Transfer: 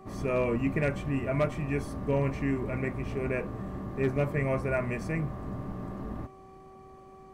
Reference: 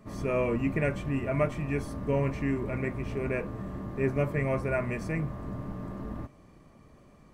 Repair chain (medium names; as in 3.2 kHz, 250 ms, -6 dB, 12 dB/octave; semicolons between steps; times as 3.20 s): clip repair -18.5 dBFS; de-hum 382 Hz, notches 3